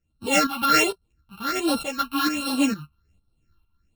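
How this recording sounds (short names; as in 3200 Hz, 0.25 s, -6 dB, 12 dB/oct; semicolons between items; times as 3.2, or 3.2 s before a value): a buzz of ramps at a fixed pitch in blocks of 32 samples; phasing stages 6, 1.3 Hz, lowest notch 480–2000 Hz; tremolo saw up 2.2 Hz, depth 75%; a shimmering, thickened sound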